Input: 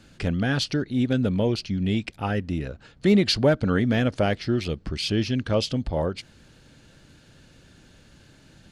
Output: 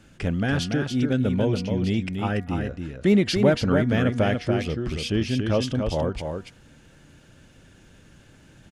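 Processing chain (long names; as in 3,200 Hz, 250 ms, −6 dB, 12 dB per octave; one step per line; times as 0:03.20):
parametric band 4,300 Hz −8.5 dB 0.44 octaves
hum removal 239.9 Hz, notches 9
on a send: single-tap delay 285 ms −5.5 dB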